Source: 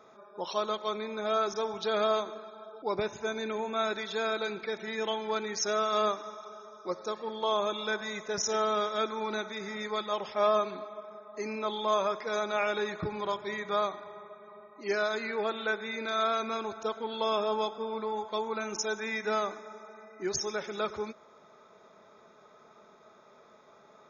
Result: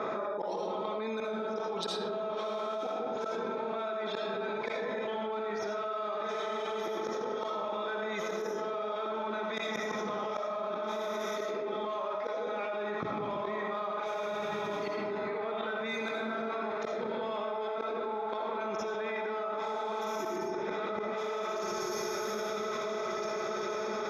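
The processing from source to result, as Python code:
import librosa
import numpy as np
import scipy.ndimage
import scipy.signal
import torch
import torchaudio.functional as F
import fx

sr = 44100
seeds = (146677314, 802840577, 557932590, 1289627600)

p1 = fx.tracing_dist(x, sr, depth_ms=0.039)
p2 = 10.0 ** (-29.5 / 20.0) * (np.abs((p1 / 10.0 ** (-29.5 / 20.0) + 3.0) % 4.0 - 2.0) - 1.0)
p3 = p1 + (p2 * 10.0 ** (-10.0 / 20.0))
p4 = fx.low_shelf(p3, sr, hz=470.0, db=4.0)
p5 = p4 + fx.echo_diffused(p4, sr, ms=1661, feedback_pct=46, wet_db=-8.0, dry=0)
p6 = fx.dynamic_eq(p5, sr, hz=810.0, q=3.9, threshold_db=-46.0, ratio=4.0, max_db=5)
p7 = fx.gate_flip(p6, sr, shuts_db=-22.0, range_db=-28)
p8 = fx.env_lowpass(p7, sr, base_hz=2400.0, full_db=-32.5)
p9 = scipy.signal.sosfilt(scipy.signal.bessel(2, 200.0, 'highpass', norm='mag', fs=sr, output='sos'), p8)
p10 = fx.rev_freeverb(p9, sr, rt60_s=1.0, hf_ratio=0.5, predelay_ms=40, drr_db=1.5)
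p11 = fx.env_flatten(p10, sr, amount_pct=100)
y = p11 * 10.0 ** (-7.0 / 20.0)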